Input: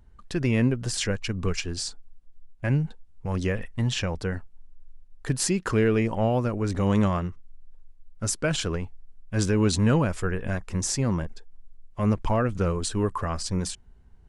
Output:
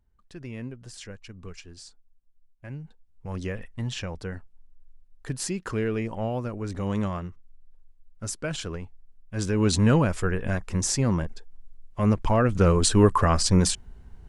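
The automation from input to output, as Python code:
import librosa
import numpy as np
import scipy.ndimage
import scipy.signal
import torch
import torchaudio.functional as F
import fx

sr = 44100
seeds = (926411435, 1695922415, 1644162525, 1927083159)

y = fx.gain(x, sr, db=fx.line((2.78, -14.5), (3.3, -5.5), (9.34, -5.5), (9.74, 1.5), (12.3, 1.5), (12.84, 8.0)))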